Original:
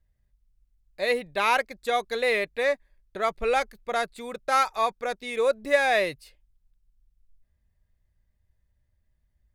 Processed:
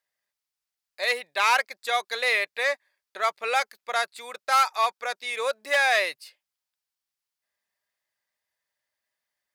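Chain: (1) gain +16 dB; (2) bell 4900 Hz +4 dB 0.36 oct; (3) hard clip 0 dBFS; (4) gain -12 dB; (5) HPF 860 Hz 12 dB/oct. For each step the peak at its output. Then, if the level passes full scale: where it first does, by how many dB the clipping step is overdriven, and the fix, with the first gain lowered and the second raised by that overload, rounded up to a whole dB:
+8.0, +8.0, 0.0, -12.0, -7.5 dBFS; step 1, 8.0 dB; step 1 +8 dB, step 4 -4 dB

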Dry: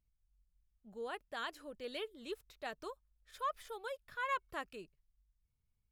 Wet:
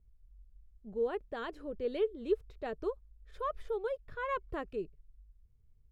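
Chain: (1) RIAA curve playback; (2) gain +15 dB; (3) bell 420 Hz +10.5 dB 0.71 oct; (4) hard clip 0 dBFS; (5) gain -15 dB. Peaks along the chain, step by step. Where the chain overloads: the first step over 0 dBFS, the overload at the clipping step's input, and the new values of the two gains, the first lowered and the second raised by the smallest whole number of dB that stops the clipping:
-25.5, -10.5, -4.5, -4.5, -19.5 dBFS; no overload

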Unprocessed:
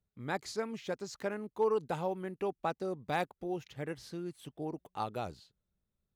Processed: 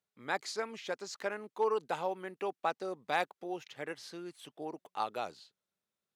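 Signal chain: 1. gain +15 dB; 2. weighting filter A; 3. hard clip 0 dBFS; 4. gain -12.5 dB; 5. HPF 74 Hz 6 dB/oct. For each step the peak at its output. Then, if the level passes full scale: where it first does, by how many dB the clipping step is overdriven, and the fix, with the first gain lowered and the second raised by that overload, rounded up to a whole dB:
-6.0, -3.5, -3.5, -16.0, -16.0 dBFS; no overload

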